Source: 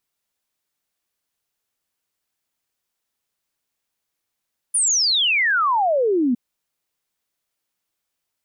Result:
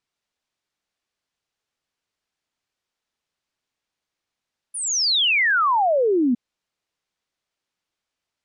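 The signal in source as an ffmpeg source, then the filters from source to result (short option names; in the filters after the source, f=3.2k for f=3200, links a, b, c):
-f lavfi -i "aevalsrc='0.168*clip(min(t,1.61-t)/0.01,0,1)*sin(2*PI*10000*1.61/log(230/10000)*(exp(log(230/10000)*t/1.61)-1))':d=1.61:s=44100"
-af "lowpass=5.8k"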